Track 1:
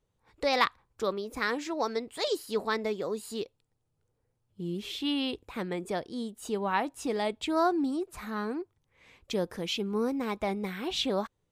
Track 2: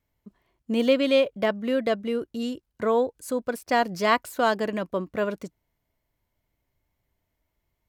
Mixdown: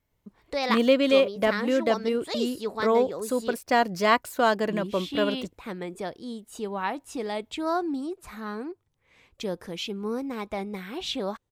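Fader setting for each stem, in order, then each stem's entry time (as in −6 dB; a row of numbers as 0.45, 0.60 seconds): −1.0, +0.5 decibels; 0.10, 0.00 seconds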